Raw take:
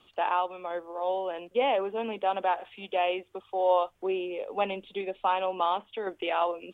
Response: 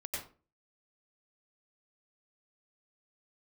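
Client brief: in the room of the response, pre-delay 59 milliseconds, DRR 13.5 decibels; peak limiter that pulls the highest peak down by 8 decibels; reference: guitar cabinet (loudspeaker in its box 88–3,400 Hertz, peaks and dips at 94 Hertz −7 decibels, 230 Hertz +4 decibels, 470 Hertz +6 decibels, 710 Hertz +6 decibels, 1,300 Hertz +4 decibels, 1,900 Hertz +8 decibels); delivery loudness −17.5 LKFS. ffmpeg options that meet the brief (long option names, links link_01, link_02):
-filter_complex "[0:a]alimiter=limit=-20.5dB:level=0:latency=1,asplit=2[link_01][link_02];[1:a]atrim=start_sample=2205,adelay=59[link_03];[link_02][link_03]afir=irnorm=-1:irlink=0,volume=-15dB[link_04];[link_01][link_04]amix=inputs=2:normalize=0,highpass=88,equalizer=frequency=94:width_type=q:width=4:gain=-7,equalizer=frequency=230:width_type=q:width=4:gain=4,equalizer=frequency=470:width_type=q:width=4:gain=6,equalizer=frequency=710:width_type=q:width=4:gain=6,equalizer=frequency=1300:width_type=q:width=4:gain=4,equalizer=frequency=1900:width_type=q:width=4:gain=8,lowpass=frequency=3400:width=0.5412,lowpass=frequency=3400:width=1.3066,volume=10.5dB"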